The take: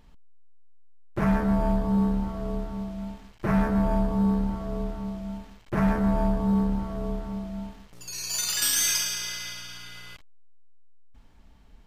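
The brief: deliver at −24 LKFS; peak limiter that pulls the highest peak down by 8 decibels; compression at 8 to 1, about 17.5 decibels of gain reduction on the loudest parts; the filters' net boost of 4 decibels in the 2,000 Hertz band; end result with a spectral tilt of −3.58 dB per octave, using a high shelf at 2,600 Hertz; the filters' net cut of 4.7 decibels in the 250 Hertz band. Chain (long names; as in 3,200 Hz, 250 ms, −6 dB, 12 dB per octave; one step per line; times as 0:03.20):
parametric band 250 Hz −7 dB
parametric band 2,000 Hz +3 dB
high-shelf EQ 2,600 Hz +5 dB
downward compressor 8 to 1, threshold −35 dBFS
level +18 dB
brickwall limiter −14.5 dBFS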